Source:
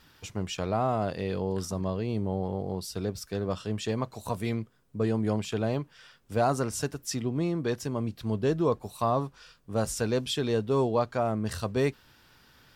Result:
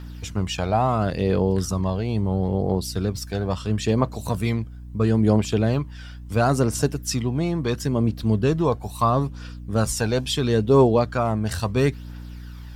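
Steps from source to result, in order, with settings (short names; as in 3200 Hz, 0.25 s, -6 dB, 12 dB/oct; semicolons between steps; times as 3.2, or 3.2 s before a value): hum 60 Hz, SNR 17 dB; phaser 0.74 Hz, delay 1.4 ms, feedback 43%; gain +6 dB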